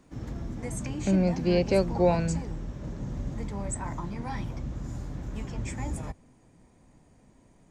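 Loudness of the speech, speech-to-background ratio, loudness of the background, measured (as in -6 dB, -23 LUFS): -26.0 LUFS, 9.5 dB, -35.5 LUFS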